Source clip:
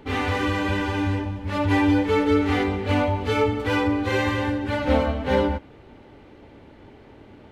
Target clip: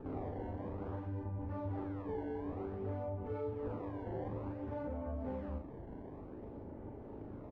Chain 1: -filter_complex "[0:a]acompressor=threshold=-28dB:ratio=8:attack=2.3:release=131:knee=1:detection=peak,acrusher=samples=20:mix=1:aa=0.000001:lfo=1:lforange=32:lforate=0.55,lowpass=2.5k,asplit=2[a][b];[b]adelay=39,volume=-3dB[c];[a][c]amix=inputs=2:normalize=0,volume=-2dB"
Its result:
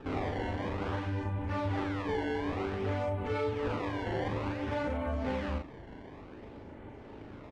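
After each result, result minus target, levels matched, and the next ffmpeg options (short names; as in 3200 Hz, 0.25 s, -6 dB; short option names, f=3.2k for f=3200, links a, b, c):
2000 Hz band +10.5 dB; compressor: peak gain reduction -6.5 dB
-filter_complex "[0:a]acompressor=threshold=-28dB:ratio=8:attack=2.3:release=131:knee=1:detection=peak,acrusher=samples=20:mix=1:aa=0.000001:lfo=1:lforange=32:lforate=0.55,lowpass=810,asplit=2[a][b];[b]adelay=39,volume=-3dB[c];[a][c]amix=inputs=2:normalize=0,volume=-2dB"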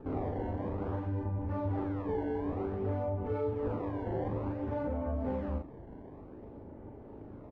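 compressor: peak gain reduction -6.5 dB
-filter_complex "[0:a]acompressor=threshold=-35.5dB:ratio=8:attack=2.3:release=131:knee=1:detection=peak,acrusher=samples=20:mix=1:aa=0.000001:lfo=1:lforange=32:lforate=0.55,lowpass=810,asplit=2[a][b];[b]adelay=39,volume=-3dB[c];[a][c]amix=inputs=2:normalize=0,volume=-2dB"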